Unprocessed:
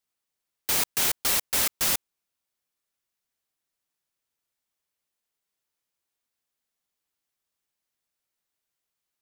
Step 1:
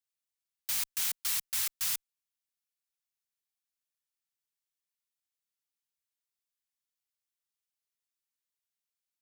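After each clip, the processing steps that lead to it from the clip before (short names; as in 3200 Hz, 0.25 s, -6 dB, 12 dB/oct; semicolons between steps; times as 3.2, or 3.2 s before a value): Chebyshev band-stop 180–840 Hz, order 2; passive tone stack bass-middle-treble 5-5-5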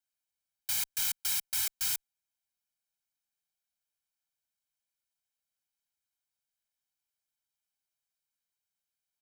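comb 1.3 ms, depth 98%; gain -2.5 dB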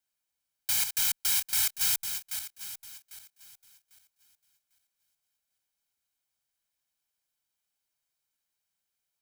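regenerating reverse delay 0.399 s, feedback 48%, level -8 dB; gain +4 dB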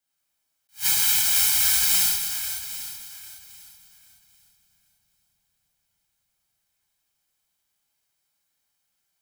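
darkening echo 0.3 s, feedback 80%, low-pass 1000 Hz, level -20 dB; non-linear reverb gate 0.23 s flat, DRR -7.5 dB; attack slew limiter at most 300 dB/s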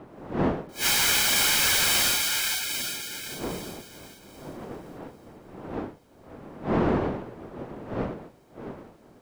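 bin magnitudes rounded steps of 30 dB; wind noise 280 Hz -38 dBFS; overdrive pedal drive 20 dB, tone 2600 Hz, clips at -7 dBFS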